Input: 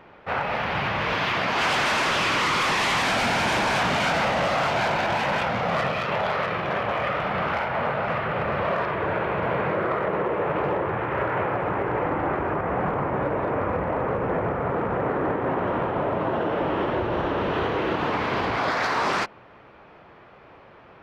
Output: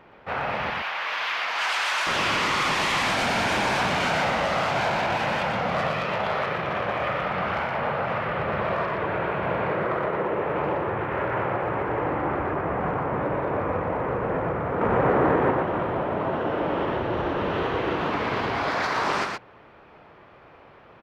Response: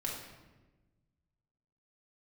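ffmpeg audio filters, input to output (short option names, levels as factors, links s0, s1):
-filter_complex "[0:a]asettb=1/sr,asplit=3[s0][s1][s2];[s0]atrim=end=0.704[s3];[s1]atrim=start=0.7:end=2.07,asetpts=PTS-STARTPTS,afade=t=in:d=0.004:c=qsin,afade=t=out:st=1.366:d=0.004:c=qsin,highpass=920[s4];[s2]atrim=start=2.066[s5];[s3][s4]acrossfade=d=0.004:c1=hsin:c2=qsin[s6];[s6][s5]acrossfade=d=0.004:c1=qsin:c2=hsin,asettb=1/sr,asplit=3[s7][s8][s9];[s7]atrim=end=14.814[s10];[s8]atrim=start=14.81:end=15.51,asetpts=PTS-STARTPTS,afade=t=in:d=0.004:c=qsin,afade=t=out:st=0.696:d=0.004:c=qsin,acontrast=47[s11];[s9]atrim=start=15.506[s12];[s10][s11]acrossfade=d=0.004:c1=hsin:c2=qsin[s13];[s13][s12]acrossfade=d=0.004:c1=qsin:c2=hsin,aecho=1:1:119:0.631,volume=0.75"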